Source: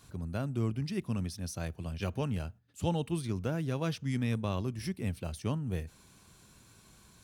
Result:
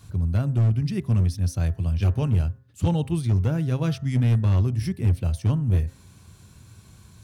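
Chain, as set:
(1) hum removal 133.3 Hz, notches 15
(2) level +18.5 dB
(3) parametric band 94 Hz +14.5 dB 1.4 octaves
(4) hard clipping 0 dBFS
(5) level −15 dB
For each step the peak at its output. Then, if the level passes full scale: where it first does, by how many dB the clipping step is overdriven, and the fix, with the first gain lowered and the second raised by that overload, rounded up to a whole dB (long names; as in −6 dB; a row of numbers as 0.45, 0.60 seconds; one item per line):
−17.5, +1.0, +6.0, 0.0, −15.0 dBFS
step 2, 6.0 dB
step 2 +12.5 dB, step 5 −9 dB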